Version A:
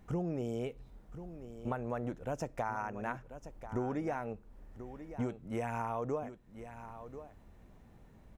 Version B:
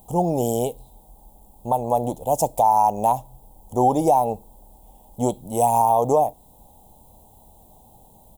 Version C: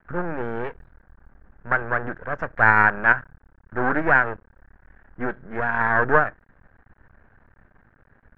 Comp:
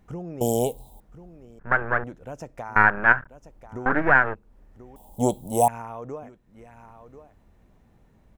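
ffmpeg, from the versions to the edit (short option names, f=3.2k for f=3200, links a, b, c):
-filter_complex "[1:a]asplit=2[a][b];[2:a]asplit=3[c][d][e];[0:a]asplit=6[f][g][h][i][j][k];[f]atrim=end=0.412[l];[a]atrim=start=0.408:end=1.002[m];[g]atrim=start=0.998:end=1.592[n];[c]atrim=start=1.588:end=2.042[o];[h]atrim=start=2.038:end=2.762[p];[d]atrim=start=2.758:end=3.282[q];[i]atrim=start=3.278:end=3.862[r];[e]atrim=start=3.858:end=4.352[s];[j]atrim=start=4.348:end=4.962[t];[b]atrim=start=4.958:end=5.682[u];[k]atrim=start=5.678[v];[l][m]acrossfade=d=0.004:c1=hsin:c2=hsin[w];[w][n]acrossfade=d=0.004:c1=hsin:c2=hsin[x];[x][o]acrossfade=d=0.004:c1=hsin:c2=hsin[y];[y][p]acrossfade=d=0.004:c1=hsin:c2=hsin[z];[z][q]acrossfade=d=0.004:c1=hsin:c2=hsin[aa];[aa][r]acrossfade=d=0.004:c1=hsin:c2=hsin[ab];[ab][s]acrossfade=d=0.004:c1=hsin:c2=hsin[ac];[ac][t]acrossfade=d=0.004:c1=hsin:c2=hsin[ad];[ad][u]acrossfade=d=0.004:c1=hsin:c2=hsin[ae];[ae][v]acrossfade=d=0.004:c1=hsin:c2=hsin"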